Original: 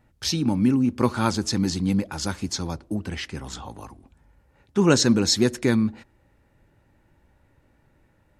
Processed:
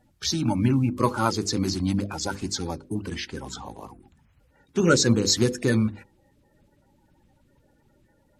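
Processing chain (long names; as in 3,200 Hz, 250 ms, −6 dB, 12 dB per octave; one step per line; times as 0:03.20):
spectral magnitudes quantised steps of 30 dB
mains-hum notches 50/100/150/200/250/300/350/400/450/500 Hz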